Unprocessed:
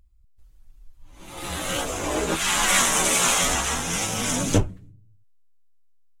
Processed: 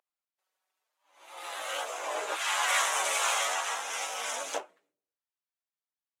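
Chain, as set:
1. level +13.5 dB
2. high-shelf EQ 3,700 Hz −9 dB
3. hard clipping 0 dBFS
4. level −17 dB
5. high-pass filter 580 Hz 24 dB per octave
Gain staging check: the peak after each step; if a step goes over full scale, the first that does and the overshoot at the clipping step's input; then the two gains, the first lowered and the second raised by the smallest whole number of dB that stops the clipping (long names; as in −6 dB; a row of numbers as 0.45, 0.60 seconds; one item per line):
+8.0, +7.0, 0.0, −17.0, −13.5 dBFS
step 1, 7.0 dB
step 1 +6.5 dB, step 4 −10 dB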